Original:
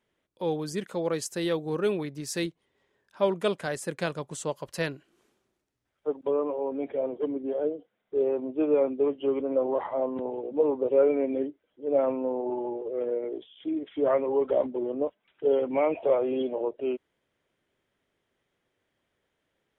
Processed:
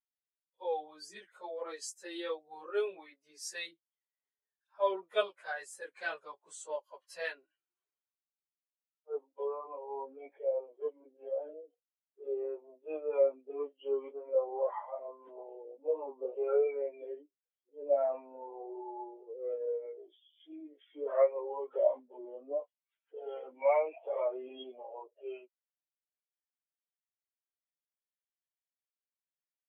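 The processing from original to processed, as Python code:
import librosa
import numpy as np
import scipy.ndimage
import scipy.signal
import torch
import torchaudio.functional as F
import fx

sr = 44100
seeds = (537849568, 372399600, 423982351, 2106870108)

y = fx.stretch_vocoder_free(x, sr, factor=1.5)
y = scipy.signal.sosfilt(scipy.signal.butter(2, 760.0, 'highpass', fs=sr, output='sos'), y)
y = fx.spectral_expand(y, sr, expansion=1.5)
y = y * 10.0 ** (3.0 / 20.0)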